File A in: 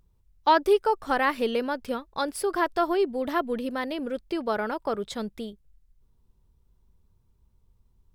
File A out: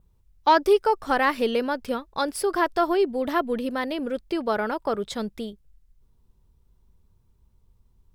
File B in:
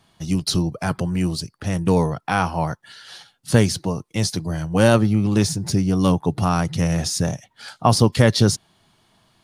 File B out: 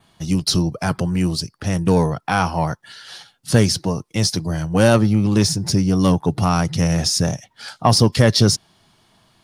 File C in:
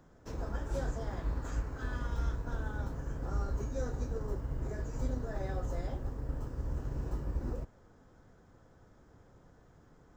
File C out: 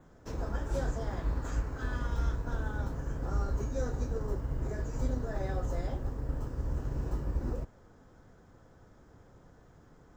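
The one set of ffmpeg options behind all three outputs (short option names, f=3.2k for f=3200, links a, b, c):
-filter_complex "[0:a]adynamicequalizer=threshold=0.00562:dfrequency=5300:dqfactor=4.4:tfrequency=5300:tqfactor=4.4:attack=5:release=100:ratio=0.375:range=3:mode=boostabove:tftype=bell,asplit=2[a][b];[b]asoftclip=type=tanh:threshold=-12dB,volume=-3dB[c];[a][c]amix=inputs=2:normalize=0,volume=-2dB"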